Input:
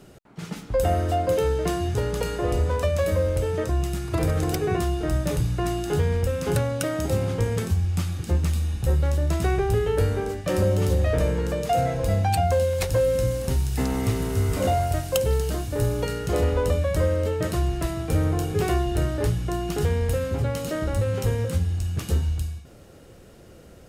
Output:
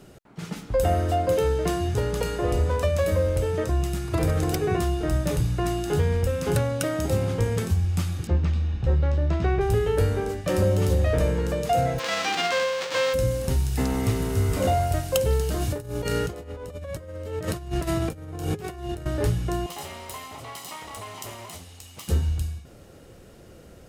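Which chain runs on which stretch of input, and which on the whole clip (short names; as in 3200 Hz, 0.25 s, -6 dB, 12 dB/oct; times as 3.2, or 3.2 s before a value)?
8.27–9.61 air absorption 180 m + notch 7100 Hz, Q 25
11.98–13.13 spectral whitening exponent 0.1 + HPF 180 Hz 24 dB/oct + air absorption 160 m
15.56–19.06 HPF 54 Hz + negative-ratio compressor -29 dBFS, ratio -0.5
19.66–22.08 minimum comb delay 1 ms + HPF 1200 Hz 6 dB/oct + bell 1600 Hz -9.5 dB 0.35 oct
whole clip: dry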